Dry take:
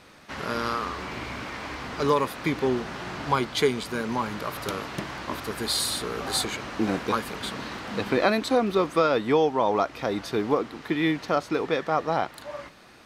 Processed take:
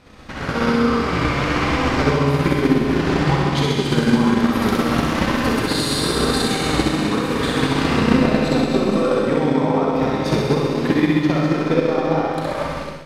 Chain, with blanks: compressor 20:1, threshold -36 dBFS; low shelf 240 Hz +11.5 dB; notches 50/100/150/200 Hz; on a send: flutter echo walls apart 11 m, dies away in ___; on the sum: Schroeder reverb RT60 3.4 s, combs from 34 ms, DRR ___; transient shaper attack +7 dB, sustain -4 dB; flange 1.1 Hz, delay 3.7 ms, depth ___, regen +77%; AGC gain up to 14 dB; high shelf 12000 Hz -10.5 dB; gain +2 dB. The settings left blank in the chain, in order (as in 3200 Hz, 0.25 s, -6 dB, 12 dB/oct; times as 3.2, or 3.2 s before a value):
1.3 s, -2 dB, 3.6 ms